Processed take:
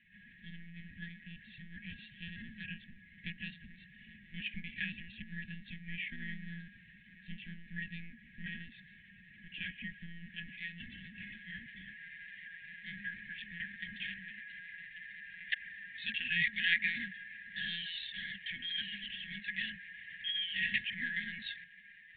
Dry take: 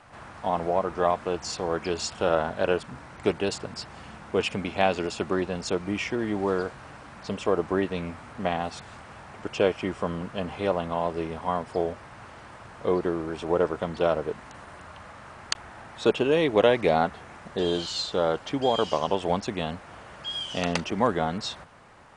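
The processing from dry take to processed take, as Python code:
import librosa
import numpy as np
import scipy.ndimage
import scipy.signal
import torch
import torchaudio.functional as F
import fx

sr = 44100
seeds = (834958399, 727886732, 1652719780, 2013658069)

y = fx.filter_sweep_bandpass(x, sr, from_hz=720.0, to_hz=1500.0, start_s=9.17, end_s=12.15, q=2.0)
y = fx.brickwall_bandstop(y, sr, low_hz=250.0, high_hz=1600.0)
y = fx.lpc_monotone(y, sr, seeds[0], pitch_hz=170.0, order=16)
y = y * librosa.db_to_amplitude(7.5)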